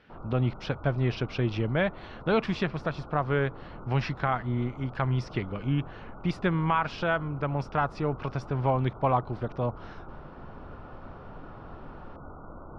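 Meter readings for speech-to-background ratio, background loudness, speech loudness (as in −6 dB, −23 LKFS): 16.5 dB, −46.0 LKFS, −29.5 LKFS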